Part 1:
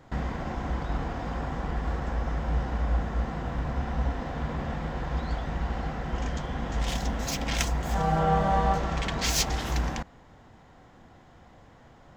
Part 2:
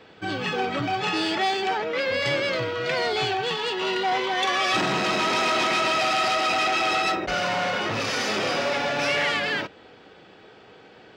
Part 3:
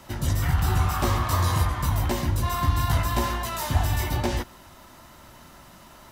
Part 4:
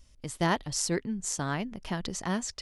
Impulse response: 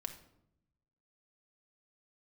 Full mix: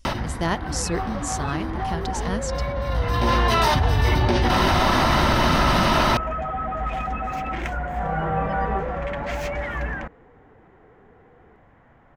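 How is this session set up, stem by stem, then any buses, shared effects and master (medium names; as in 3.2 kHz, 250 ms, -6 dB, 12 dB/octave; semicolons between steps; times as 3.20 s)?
-1.5 dB, 0.05 s, no send, resonant high shelf 3.1 kHz -14 dB, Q 1.5
-5.0 dB, 0.40 s, no send, spectral contrast enhancement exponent 3.7; Chebyshev low-pass 1.6 kHz, order 2
-3.0 dB, 0.05 s, send -17 dB, Savitzky-Golay filter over 15 samples; level flattener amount 100%; auto duck -19 dB, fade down 0.30 s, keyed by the fourth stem
+2.0 dB, 0.00 s, no send, none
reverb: on, RT60 0.80 s, pre-delay 4 ms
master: none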